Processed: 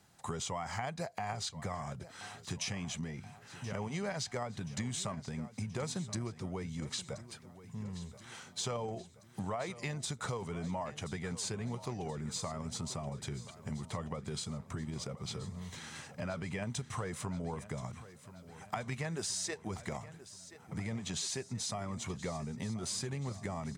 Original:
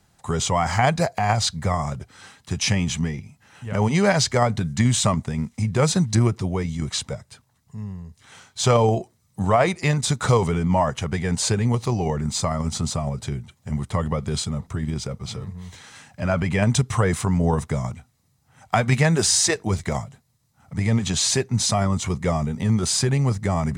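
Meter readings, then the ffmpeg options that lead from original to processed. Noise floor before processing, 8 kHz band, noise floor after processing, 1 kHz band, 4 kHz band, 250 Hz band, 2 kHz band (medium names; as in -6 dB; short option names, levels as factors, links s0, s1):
-64 dBFS, -15.5 dB, -57 dBFS, -17.0 dB, -15.0 dB, -16.5 dB, -16.0 dB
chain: -filter_complex "[0:a]highpass=f=130:p=1,acompressor=threshold=0.0178:ratio=4,asplit=2[s0][s1];[s1]aecho=0:1:1028|2056|3084|4112|5140:0.168|0.094|0.0526|0.0295|0.0165[s2];[s0][s2]amix=inputs=2:normalize=0,volume=0.708"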